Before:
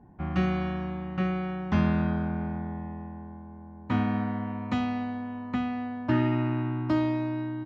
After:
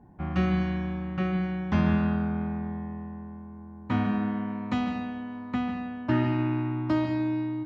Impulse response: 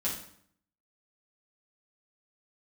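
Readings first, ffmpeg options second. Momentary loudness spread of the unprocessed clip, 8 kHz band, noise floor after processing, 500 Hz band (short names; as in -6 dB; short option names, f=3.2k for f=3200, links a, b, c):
13 LU, n/a, -44 dBFS, -0.5 dB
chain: -filter_complex "[0:a]asplit=2[a][b];[1:a]atrim=start_sample=2205,adelay=140[c];[b][c]afir=irnorm=-1:irlink=0,volume=-13.5dB[d];[a][d]amix=inputs=2:normalize=0"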